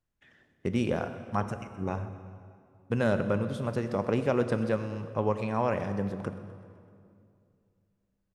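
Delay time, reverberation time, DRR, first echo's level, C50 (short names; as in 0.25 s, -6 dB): 0.127 s, 2.4 s, 9.5 dB, -19.0 dB, 10.0 dB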